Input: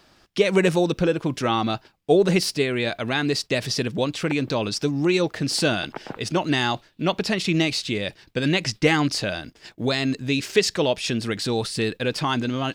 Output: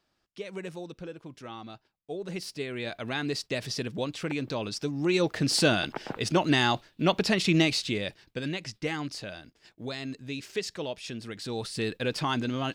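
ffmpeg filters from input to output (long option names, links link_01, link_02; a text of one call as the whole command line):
ffmpeg -i in.wav -af "volume=6.5dB,afade=type=in:start_time=2.19:duration=0.91:silence=0.266073,afade=type=in:start_time=4.97:duration=0.4:silence=0.473151,afade=type=out:start_time=7.59:duration=0.98:silence=0.266073,afade=type=in:start_time=11.34:duration=0.65:silence=0.398107" out.wav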